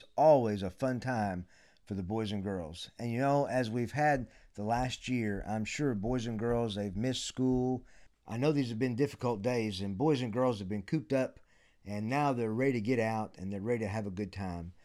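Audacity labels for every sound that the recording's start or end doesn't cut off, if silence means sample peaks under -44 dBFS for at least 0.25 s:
1.900000	4.240000	sound
4.580000	7.800000	sound
8.280000	11.370000	sound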